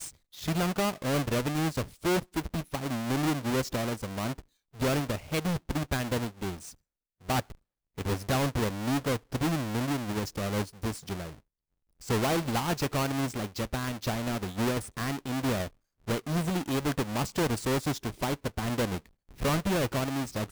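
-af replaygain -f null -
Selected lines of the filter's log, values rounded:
track_gain = +11.5 dB
track_peak = 0.044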